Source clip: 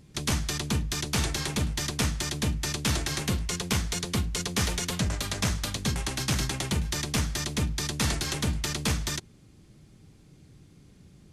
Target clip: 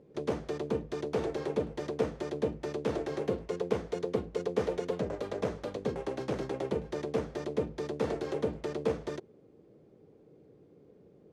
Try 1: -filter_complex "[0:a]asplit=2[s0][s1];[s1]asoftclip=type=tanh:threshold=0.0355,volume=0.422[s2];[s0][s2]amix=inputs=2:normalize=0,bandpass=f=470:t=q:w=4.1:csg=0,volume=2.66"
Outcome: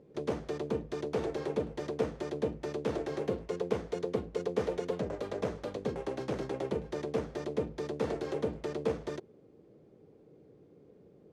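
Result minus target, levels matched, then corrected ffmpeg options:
saturation: distortion +15 dB
-filter_complex "[0:a]asplit=2[s0][s1];[s1]asoftclip=type=tanh:threshold=0.141,volume=0.422[s2];[s0][s2]amix=inputs=2:normalize=0,bandpass=f=470:t=q:w=4.1:csg=0,volume=2.66"

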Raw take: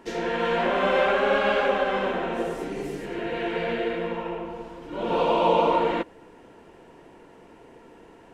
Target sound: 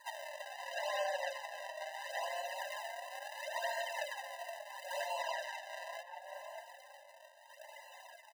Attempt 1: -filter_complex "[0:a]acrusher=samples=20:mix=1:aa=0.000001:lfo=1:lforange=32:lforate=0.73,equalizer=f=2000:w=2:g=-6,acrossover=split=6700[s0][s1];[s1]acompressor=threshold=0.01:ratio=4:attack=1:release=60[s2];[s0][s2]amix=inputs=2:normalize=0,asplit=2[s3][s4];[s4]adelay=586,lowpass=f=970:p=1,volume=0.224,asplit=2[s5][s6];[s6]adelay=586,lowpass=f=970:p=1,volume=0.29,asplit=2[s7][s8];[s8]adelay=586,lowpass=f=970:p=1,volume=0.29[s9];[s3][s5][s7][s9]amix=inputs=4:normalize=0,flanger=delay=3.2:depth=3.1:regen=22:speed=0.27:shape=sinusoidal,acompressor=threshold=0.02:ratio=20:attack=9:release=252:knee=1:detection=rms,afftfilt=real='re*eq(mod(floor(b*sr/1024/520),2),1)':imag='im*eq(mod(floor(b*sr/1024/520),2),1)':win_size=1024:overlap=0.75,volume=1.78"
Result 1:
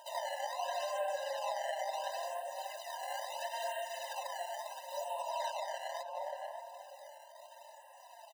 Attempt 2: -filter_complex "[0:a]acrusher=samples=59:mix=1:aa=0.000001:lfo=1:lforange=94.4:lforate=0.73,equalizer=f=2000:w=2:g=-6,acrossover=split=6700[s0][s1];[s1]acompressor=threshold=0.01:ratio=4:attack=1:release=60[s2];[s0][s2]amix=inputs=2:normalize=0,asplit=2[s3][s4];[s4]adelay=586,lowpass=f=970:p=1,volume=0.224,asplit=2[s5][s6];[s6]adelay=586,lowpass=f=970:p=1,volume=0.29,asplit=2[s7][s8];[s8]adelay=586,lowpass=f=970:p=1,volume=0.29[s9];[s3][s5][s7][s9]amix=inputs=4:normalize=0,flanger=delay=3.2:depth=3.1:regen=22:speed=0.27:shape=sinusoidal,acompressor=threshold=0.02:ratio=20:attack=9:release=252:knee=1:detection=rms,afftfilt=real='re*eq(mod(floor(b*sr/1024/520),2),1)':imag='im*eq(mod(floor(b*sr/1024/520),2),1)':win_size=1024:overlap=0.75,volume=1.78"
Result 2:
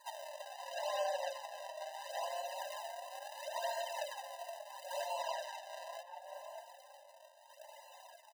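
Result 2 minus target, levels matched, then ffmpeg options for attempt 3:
2 kHz band -6.0 dB
-filter_complex "[0:a]acrusher=samples=59:mix=1:aa=0.000001:lfo=1:lforange=94.4:lforate=0.73,equalizer=f=2000:w=2:g=4.5,acrossover=split=6700[s0][s1];[s1]acompressor=threshold=0.01:ratio=4:attack=1:release=60[s2];[s0][s2]amix=inputs=2:normalize=0,asplit=2[s3][s4];[s4]adelay=586,lowpass=f=970:p=1,volume=0.224,asplit=2[s5][s6];[s6]adelay=586,lowpass=f=970:p=1,volume=0.29,asplit=2[s7][s8];[s8]adelay=586,lowpass=f=970:p=1,volume=0.29[s9];[s3][s5][s7][s9]amix=inputs=4:normalize=0,flanger=delay=3.2:depth=3.1:regen=22:speed=0.27:shape=sinusoidal,acompressor=threshold=0.02:ratio=20:attack=9:release=252:knee=1:detection=rms,afftfilt=real='re*eq(mod(floor(b*sr/1024/520),2),1)':imag='im*eq(mod(floor(b*sr/1024/520),2),1)':win_size=1024:overlap=0.75,volume=1.78"

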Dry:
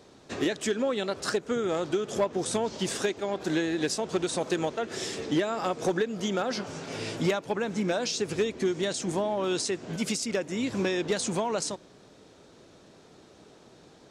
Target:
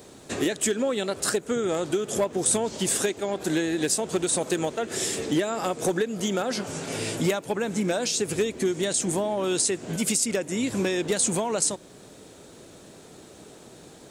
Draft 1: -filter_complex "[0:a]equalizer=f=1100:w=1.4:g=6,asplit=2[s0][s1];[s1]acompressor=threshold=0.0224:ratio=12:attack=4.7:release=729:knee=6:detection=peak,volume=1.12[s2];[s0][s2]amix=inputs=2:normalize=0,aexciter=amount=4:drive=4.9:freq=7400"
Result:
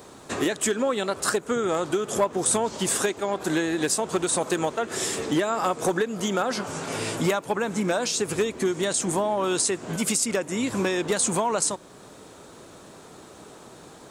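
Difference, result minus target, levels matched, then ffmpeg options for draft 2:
1 kHz band +4.5 dB
-filter_complex "[0:a]equalizer=f=1100:w=1.4:g=-2.5,asplit=2[s0][s1];[s1]acompressor=threshold=0.0224:ratio=12:attack=4.7:release=729:knee=6:detection=peak,volume=1.12[s2];[s0][s2]amix=inputs=2:normalize=0,aexciter=amount=4:drive=4.9:freq=7400"

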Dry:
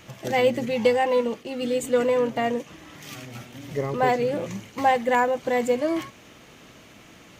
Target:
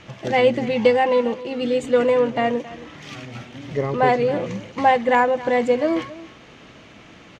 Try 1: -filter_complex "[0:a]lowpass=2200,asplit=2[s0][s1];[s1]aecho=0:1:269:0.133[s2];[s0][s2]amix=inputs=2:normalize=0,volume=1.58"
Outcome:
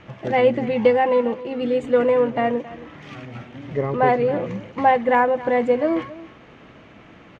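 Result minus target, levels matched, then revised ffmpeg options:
4 kHz band -6.0 dB
-filter_complex "[0:a]lowpass=4500,asplit=2[s0][s1];[s1]aecho=0:1:269:0.133[s2];[s0][s2]amix=inputs=2:normalize=0,volume=1.58"

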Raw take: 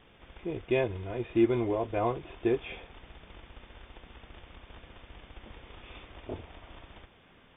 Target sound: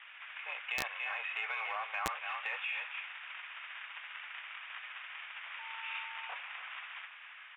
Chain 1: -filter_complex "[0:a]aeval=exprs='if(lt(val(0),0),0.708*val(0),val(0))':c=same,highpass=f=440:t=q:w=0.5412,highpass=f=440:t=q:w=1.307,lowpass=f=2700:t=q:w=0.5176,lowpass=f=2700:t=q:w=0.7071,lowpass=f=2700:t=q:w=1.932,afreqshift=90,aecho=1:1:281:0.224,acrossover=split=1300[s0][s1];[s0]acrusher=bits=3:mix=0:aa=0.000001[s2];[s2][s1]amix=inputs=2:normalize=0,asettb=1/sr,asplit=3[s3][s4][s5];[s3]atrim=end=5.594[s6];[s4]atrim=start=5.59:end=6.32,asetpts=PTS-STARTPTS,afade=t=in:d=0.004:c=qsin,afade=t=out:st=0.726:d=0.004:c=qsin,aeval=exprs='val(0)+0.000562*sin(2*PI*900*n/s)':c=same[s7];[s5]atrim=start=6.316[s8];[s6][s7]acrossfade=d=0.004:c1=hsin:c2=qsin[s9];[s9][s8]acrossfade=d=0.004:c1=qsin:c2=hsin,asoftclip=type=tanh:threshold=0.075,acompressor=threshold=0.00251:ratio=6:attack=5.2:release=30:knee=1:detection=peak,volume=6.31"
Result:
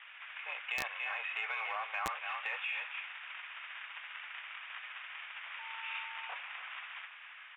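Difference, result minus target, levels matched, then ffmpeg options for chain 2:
saturation: distortion +9 dB
-filter_complex "[0:a]aeval=exprs='if(lt(val(0),0),0.708*val(0),val(0))':c=same,highpass=f=440:t=q:w=0.5412,highpass=f=440:t=q:w=1.307,lowpass=f=2700:t=q:w=0.5176,lowpass=f=2700:t=q:w=0.7071,lowpass=f=2700:t=q:w=1.932,afreqshift=90,aecho=1:1:281:0.224,acrossover=split=1300[s0][s1];[s0]acrusher=bits=3:mix=0:aa=0.000001[s2];[s2][s1]amix=inputs=2:normalize=0,asettb=1/sr,asplit=3[s3][s4][s5];[s3]atrim=end=5.594[s6];[s4]atrim=start=5.59:end=6.32,asetpts=PTS-STARTPTS,afade=t=in:d=0.004:c=qsin,afade=t=out:st=0.726:d=0.004:c=qsin,aeval=exprs='val(0)+0.000562*sin(2*PI*900*n/s)':c=same[s7];[s5]atrim=start=6.316[s8];[s6][s7]acrossfade=d=0.004:c1=hsin:c2=qsin[s9];[s9][s8]acrossfade=d=0.004:c1=qsin:c2=hsin,asoftclip=type=tanh:threshold=0.168,acompressor=threshold=0.00251:ratio=6:attack=5.2:release=30:knee=1:detection=peak,volume=6.31"

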